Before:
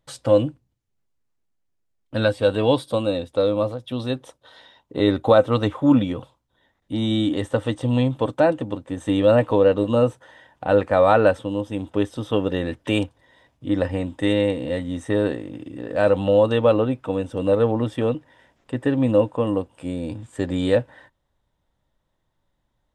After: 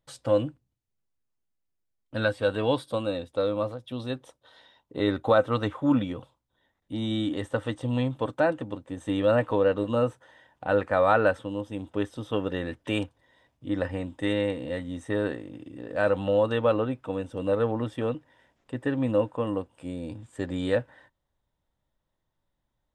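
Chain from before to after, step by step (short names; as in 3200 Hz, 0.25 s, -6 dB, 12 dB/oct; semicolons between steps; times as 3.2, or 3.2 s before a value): dynamic EQ 1500 Hz, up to +6 dB, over -38 dBFS, Q 1.4; gain -7 dB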